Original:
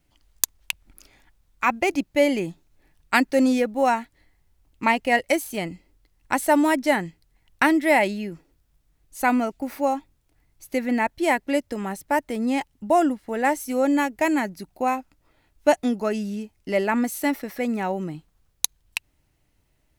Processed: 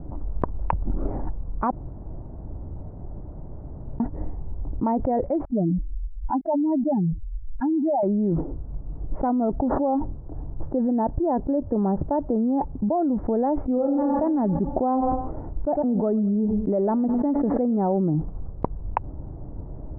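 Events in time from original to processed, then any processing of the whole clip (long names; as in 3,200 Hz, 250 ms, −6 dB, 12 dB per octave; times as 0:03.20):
0:01.71–0:04.00: fill with room tone
0:05.45–0:08.03: expanding power law on the bin magnitudes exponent 3.6
0:09.58–0:13.16: elliptic low-pass filter 1,800 Hz
0:13.73–0:14.19: thrown reverb, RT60 0.85 s, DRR −2.5 dB
0:14.69–0:17.78: repeating echo 103 ms, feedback 42%, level −22.5 dB
whole clip: Bessel low-pass filter 580 Hz, order 6; envelope flattener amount 100%; level −7 dB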